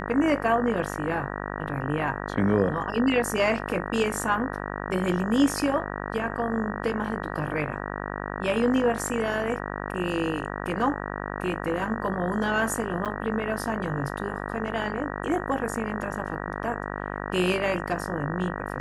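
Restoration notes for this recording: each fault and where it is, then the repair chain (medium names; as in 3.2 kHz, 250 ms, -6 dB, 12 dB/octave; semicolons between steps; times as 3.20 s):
buzz 50 Hz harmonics 38 -33 dBFS
13.05–13.06 s: dropout 7.8 ms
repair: de-hum 50 Hz, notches 38; interpolate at 13.05 s, 7.8 ms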